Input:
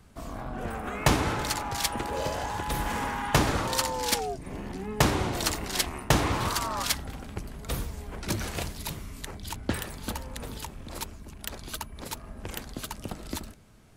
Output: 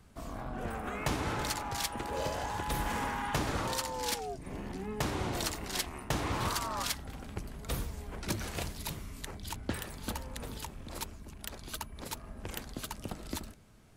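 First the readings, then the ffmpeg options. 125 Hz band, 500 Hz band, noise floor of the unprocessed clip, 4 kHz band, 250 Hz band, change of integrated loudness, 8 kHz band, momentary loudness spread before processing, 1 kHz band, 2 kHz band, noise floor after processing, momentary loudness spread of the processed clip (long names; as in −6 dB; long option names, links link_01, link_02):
−6.5 dB, −6.0 dB, −47 dBFS, −6.5 dB, −6.0 dB, −6.0 dB, −6.5 dB, 14 LU, −5.5 dB, −6.5 dB, −50 dBFS, 10 LU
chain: -af "alimiter=limit=-17dB:level=0:latency=1:release=360,volume=-3.5dB"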